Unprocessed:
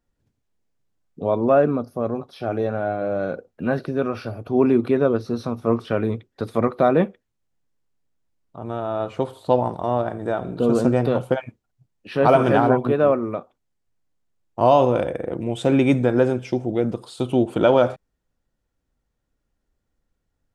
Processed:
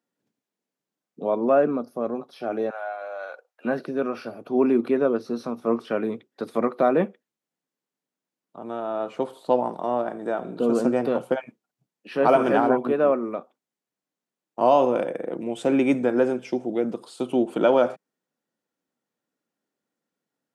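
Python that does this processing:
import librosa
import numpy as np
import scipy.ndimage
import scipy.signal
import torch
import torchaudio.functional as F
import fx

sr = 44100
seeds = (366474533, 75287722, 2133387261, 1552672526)

y = fx.highpass(x, sr, hz=710.0, slope=24, at=(2.7, 3.65))
y = scipy.signal.sosfilt(scipy.signal.butter(4, 190.0, 'highpass', fs=sr, output='sos'), y)
y = fx.dynamic_eq(y, sr, hz=3700.0, q=4.8, threshold_db=-52.0, ratio=4.0, max_db=-6)
y = F.gain(torch.from_numpy(y), -2.5).numpy()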